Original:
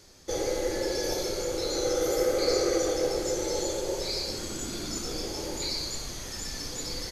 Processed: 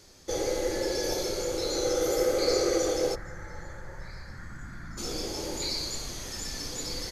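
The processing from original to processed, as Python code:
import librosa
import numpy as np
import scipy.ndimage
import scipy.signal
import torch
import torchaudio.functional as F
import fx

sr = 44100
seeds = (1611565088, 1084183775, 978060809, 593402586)

y = fx.curve_eq(x, sr, hz=(160.0, 400.0, 1800.0, 2700.0), db=(0, -23, 5, -23), at=(3.14, 4.97), fade=0.02)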